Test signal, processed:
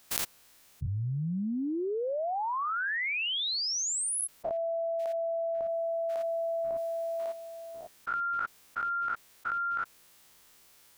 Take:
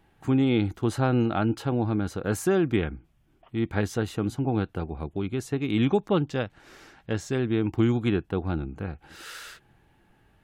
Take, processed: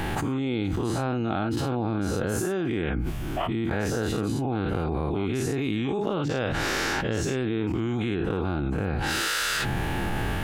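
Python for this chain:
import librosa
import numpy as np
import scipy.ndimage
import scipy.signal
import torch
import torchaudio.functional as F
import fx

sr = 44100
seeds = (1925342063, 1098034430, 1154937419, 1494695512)

y = fx.spec_dilate(x, sr, span_ms=120)
y = fx.env_flatten(y, sr, amount_pct=100)
y = y * 10.0 ** (-10.5 / 20.0)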